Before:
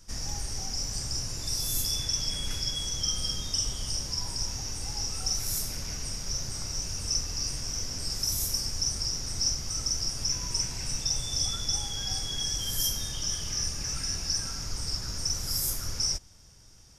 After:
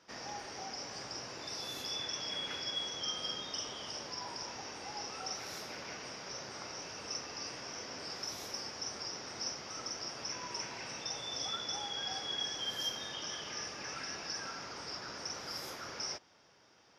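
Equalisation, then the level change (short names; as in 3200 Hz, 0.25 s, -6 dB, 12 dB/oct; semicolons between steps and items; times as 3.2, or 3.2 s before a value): HPF 420 Hz 12 dB/oct; air absorption 300 m; +4.5 dB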